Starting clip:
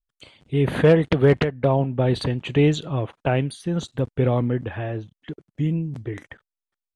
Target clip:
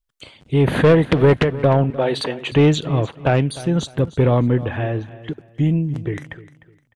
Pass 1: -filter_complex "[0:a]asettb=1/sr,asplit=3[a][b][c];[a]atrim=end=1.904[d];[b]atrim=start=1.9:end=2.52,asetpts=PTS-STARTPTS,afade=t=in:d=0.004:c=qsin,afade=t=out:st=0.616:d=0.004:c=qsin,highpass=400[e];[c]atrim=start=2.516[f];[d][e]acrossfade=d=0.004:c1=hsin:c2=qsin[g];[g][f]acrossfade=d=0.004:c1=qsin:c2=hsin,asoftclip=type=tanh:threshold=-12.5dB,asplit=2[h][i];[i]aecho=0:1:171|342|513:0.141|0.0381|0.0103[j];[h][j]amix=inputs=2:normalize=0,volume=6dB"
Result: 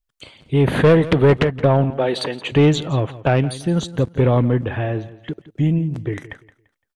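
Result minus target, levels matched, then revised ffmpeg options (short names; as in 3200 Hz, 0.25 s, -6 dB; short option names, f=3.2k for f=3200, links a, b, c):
echo 0.132 s early
-filter_complex "[0:a]asettb=1/sr,asplit=3[a][b][c];[a]atrim=end=1.904[d];[b]atrim=start=1.9:end=2.52,asetpts=PTS-STARTPTS,afade=t=in:d=0.004:c=qsin,afade=t=out:st=0.616:d=0.004:c=qsin,highpass=400[e];[c]atrim=start=2.516[f];[d][e]acrossfade=d=0.004:c1=hsin:c2=qsin[g];[g][f]acrossfade=d=0.004:c1=qsin:c2=hsin,asoftclip=type=tanh:threshold=-12.5dB,asplit=2[h][i];[i]aecho=0:1:303|606|909:0.141|0.0381|0.0103[j];[h][j]amix=inputs=2:normalize=0,volume=6dB"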